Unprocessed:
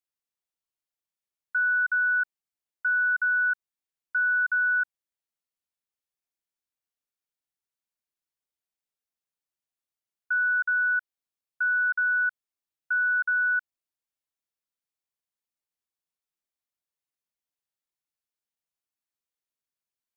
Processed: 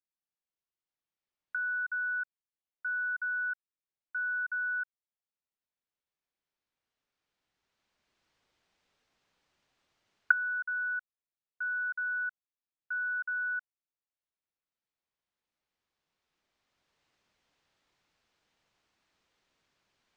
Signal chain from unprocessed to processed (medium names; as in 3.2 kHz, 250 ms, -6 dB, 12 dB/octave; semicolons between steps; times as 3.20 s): recorder AGC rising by 8.7 dB/s; distance through air 150 m; trim -8 dB